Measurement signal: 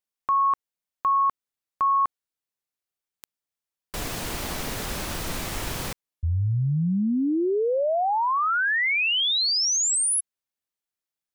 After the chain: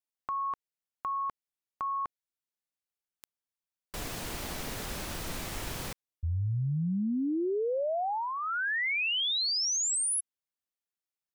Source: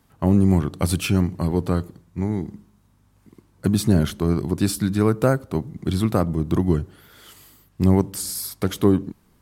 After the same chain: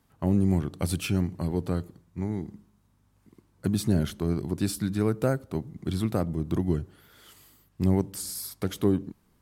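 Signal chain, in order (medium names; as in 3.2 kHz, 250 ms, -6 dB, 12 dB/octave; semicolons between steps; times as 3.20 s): dynamic bell 1.1 kHz, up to -5 dB, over -39 dBFS, Q 2.5; trim -6.5 dB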